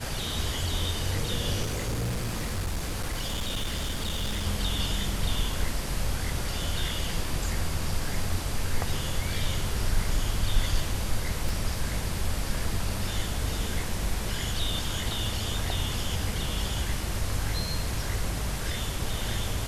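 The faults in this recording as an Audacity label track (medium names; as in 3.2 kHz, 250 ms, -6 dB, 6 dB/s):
1.620000	4.470000	clipped -25.5 dBFS
8.090000	8.090000	dropout 2.1 ms
11.490000	11.490000	pop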